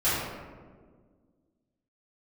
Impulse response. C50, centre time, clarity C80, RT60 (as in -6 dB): -1.5 dB, 101 ms, 1.0 dB, 1.6 s